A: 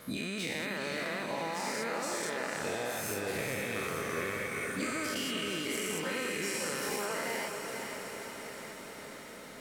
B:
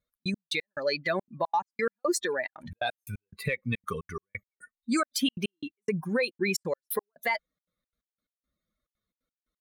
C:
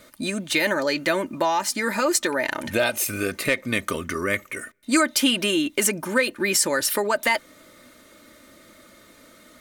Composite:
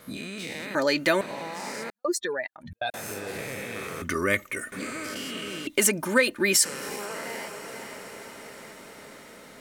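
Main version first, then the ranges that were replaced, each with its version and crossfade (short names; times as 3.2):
A
0.75–1.21 from C
1.9–2.94 from B
4.02–4.72 from C
5.67–6.65 from C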